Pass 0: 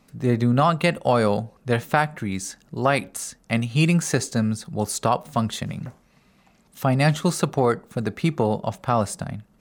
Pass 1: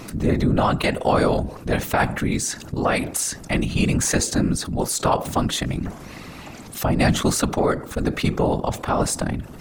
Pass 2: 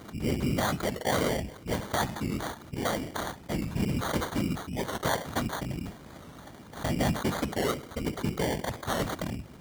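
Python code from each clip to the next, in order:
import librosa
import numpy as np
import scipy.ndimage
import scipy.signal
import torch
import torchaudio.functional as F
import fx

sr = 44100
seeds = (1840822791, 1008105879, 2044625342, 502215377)

y1 = fx.tremolo_shape(x, sr, shape='saw_down', hz=1.0, depth_pct=45)
y1 = fx.whisperise(y1, sr, seeds[0])
y1 = fx.env_flatten(y1, sr, amount_pct=50)
y2 = fx.sample_hold(y1, sr, seeds[1], rate_hz=2600.0, jitter_pct=0)
y2 = scipy.signal.sosfilt(scipy.signal.butter(2, 43.0, 'highpass', fs=sr, output='sos'), y2)
y2 = fx.record_warp(y2, sr, rpm=45.0, depth_cents=100.0)
y2 = y2 * librosa.db_to_amplitude(-9.0)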